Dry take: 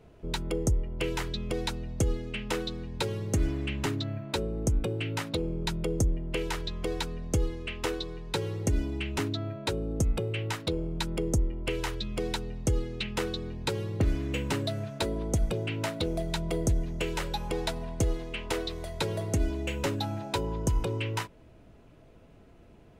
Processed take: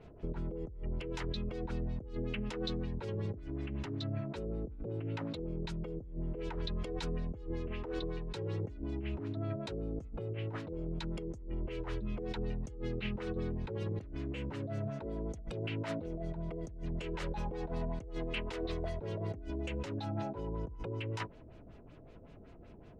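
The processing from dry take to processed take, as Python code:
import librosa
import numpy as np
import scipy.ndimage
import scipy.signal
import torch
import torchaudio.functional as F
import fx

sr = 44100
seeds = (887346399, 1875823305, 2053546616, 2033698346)

y = fx.over_compress(x, sr, threshold_db=-35.0, ratio=-1.0)
y = fx.filter_lfo_lowpass(y, sr, shape='sine', hz=5.3, low_hz=460.0, high_hz=6800.0, q=1.0)
y = y * librosa.db_to_amplitude(-3.5)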